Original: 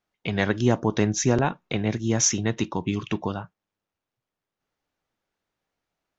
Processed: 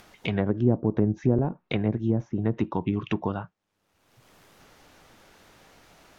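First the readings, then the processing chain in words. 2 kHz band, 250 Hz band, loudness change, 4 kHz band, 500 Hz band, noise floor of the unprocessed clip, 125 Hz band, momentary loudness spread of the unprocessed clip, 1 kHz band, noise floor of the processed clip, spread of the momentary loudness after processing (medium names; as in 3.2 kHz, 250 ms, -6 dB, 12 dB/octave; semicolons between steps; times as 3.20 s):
-8.0 dB, 0.0 dB, -2.0 dB, -10.0 dB, -2.0 dB, under -85 dBFS, 0.0 dB, 8 LU, -5.5 dB, -76 dBFS, 7 LU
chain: upward compressor, threshold -32 dBFS; low-pass that closes with the level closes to 480 Hz, closed at -18.5 dBFS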